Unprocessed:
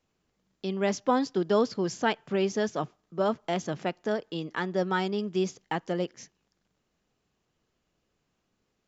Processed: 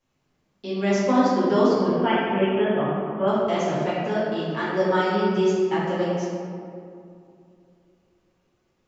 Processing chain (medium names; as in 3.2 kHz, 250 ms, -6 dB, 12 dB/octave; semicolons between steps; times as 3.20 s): 1.87–3.28 s: brick-wall FIR low-pass 3.5 kHz; feedback echo behind a low-pass 384 ms, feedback 45%, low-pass 680 Hz, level -18 dB; reverberation RT60 2.3 s, pre-delay 5 ms, DRR -10.5 dB; trim -4.5 dB